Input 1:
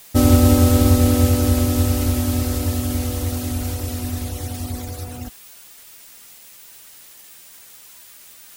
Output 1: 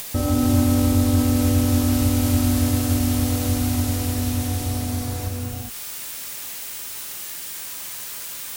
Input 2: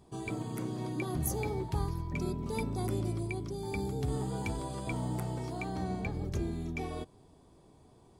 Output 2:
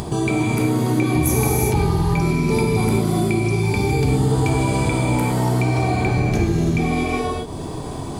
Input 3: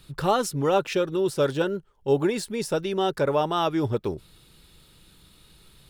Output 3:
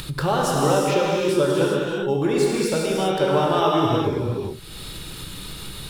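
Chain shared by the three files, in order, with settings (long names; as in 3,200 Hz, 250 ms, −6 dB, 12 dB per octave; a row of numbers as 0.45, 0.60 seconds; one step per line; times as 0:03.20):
downward compressor 6 to 1, threshold −18 dBFS
reverb whose tail is shaped and stops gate 430 ms flat, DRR −4 dB
upward compression, threshold −21 dBFS
normalise the peak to −6 dBFS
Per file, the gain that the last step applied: −2.5, +9.0, +0.5 decibels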